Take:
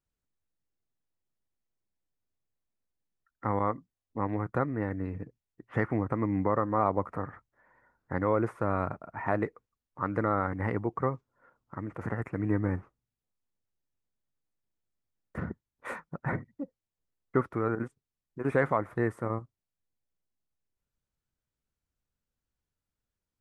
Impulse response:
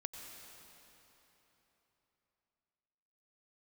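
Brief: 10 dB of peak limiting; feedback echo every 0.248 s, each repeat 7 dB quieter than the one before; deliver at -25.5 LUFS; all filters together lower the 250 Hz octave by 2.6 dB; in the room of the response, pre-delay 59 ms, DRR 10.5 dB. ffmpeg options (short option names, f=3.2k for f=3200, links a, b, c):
-filter_complex "[0:a]equalizer=f=250:t=o:g=-3.5,alimiter=limit=-23dB:level=0:latency=1,aecho=1:1:248|496|744|992|1240:0.447|0.201|0.0905|0.0407|0.0183,asplit=2[a][b];[1:a]atrim=start_sample=2205,adelay=59[c];[b][c]afir=irnorm=-1:irlink=0,volume=-8.5dB[d];[a][d]amix=inputs=2:normalize=0,volume=11.5dB"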